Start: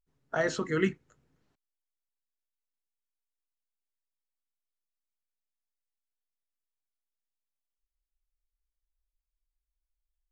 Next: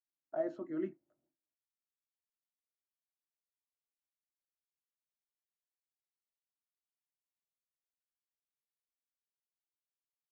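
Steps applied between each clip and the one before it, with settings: gate with hold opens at -60 dBFS; two resonant band-passes 450 Hz, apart 0.86 oct; trim -1.5 dB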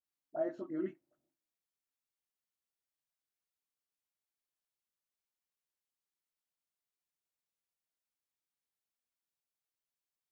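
phase dispersion highs, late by 41 ms, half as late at 1 kHz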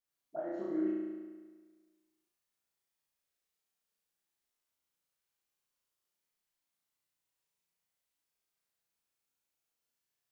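compression, threshold -37 dBFS, peak gain reduction 8 dB; flutter echo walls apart 6 m, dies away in 1.5 s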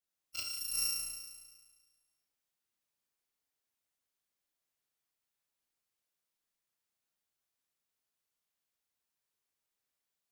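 bit-reversed sample order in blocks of 256 samples; trim -1.5 dB

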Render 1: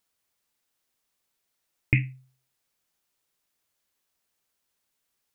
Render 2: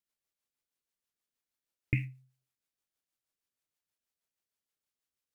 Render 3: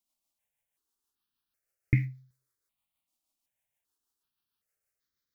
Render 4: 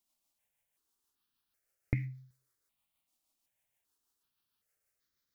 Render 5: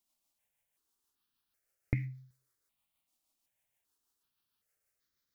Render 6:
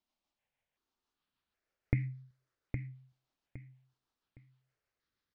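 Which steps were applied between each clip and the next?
spectral noise reduction 6 dB; companded quantiser 8-bit; rotary cabinet horn 6.3 Hz; trim -5 dB
stepped phaser 2.6 Hz 450–2700 Hz; trim +6.5 dB
compression 6:1, threshold -31 dBFS, peak gain reduction 12 dB; trim +2.5 dB
no audible change
distance through air 190 m; on a send: feedback delay 813 ms, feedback 28%, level -7 dB; on the sum: trim +1.5 dB

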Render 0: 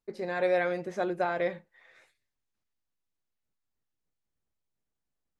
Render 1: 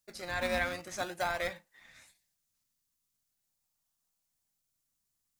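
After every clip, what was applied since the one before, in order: tone controls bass -14 dB, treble +14 dB; in parallel at -10.5 dB: decimation with a swept rate 38×, swing 100% 0.44 Hz; on the sum: peaking EQ 410 Hz -13.5 dB 0.94 oct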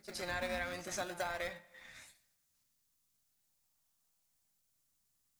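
compression 4:1, threshold -39 dBFS, peak gain reduction 10.5 dB; reverse echo 106 ms -15 dB; on a send at -20.5 dB: reverberation RT60 1.1 s, pre-delay 25 ms; on the sum: trim +2.5 dB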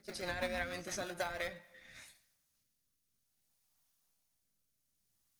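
band-stop 7.5 kHz, Q 9.5; rotary cabinet horn 6.3 Hz, later 0.6 Hz, at 1.16 s; trim +2.5 dB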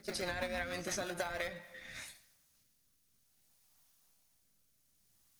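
compression 4:1, threshold -43 dBFS, peak gain reduction 10 dB; trim +7.5 dB

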